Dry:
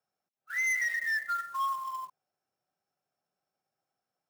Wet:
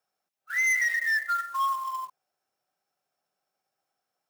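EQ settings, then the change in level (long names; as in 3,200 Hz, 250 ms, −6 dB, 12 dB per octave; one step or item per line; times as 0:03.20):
low-shelf EQ 290 Hz −10 dB
+5.0 dB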